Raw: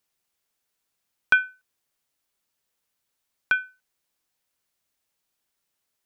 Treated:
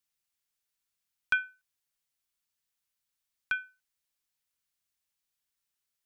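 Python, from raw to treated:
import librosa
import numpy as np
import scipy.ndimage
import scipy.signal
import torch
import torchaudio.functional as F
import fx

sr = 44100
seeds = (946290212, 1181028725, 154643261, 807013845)

y = fx.peak_eq(x, sr, hz=450.0, db=-9.5, octaves=2.7)
y = F.gain(torch.from_numpy(y), -5.5).numpy()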